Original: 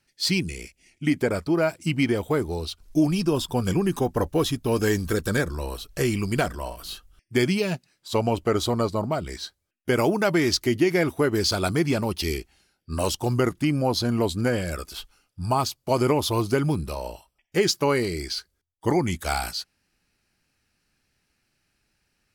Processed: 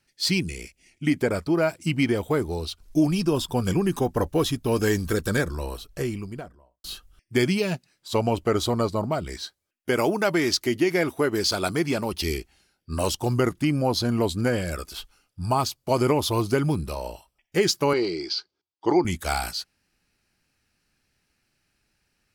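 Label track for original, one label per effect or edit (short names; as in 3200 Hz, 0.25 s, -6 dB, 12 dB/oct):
5.490000	6.840000	studio fade out
9.410000	12.130000	low shelf 120 Hz -11.5 dB
17.930000	19.050000	speaker cabinet 220–5300 Hz, peaks and dips at 230 Hz -6 dB, 340 Hz +6 dB, 540 Hz -4 dB, 840 Hz +4 dB, 1800 Hz -9 dB, 4900 Hz +5 dB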